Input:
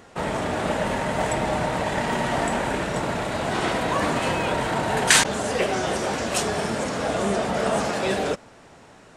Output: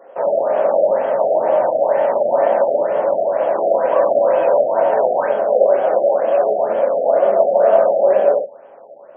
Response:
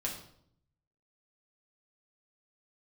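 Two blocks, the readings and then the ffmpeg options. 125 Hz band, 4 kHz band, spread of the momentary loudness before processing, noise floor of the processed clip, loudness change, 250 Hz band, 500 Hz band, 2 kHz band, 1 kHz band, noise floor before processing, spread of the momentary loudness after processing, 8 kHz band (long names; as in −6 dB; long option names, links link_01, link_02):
below −15 dB, below −20 dB, 3 LU, −41 dBFS, +8.0 dB, −6.0 dB, +13.5 dB, −7.5 dB, +6.0 dB, −49 dBFS, 4 LU, below −40 dB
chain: -filter_complex "[0:a]highpass=frequency=570:width_type=q:width=4.9,equalizer=frequency=2600:width=0.66:gain=-10.5[link_01];[1:a]atrim=start_sample=2205,afade=type=out:start_time=0.17:duration=0.01,atrim=end_sample=7938,asetrate=42777,aresample=44100[link_02];[link_01][link_02]afir=irnorm=-1:irlink=0,afftfilt=real='re*lt(b*sr/1024,770*pow(3400/770,0.5+0.5*sin(2*PI*2.1*pts/sr)))':imag='im*lt(b*sr/1024,770*pow(3400/770,0.5+0.5*sin(2*PI*2.1*pts/sr)))':win_size=1024:overlap=0.75,volume=1.5dB"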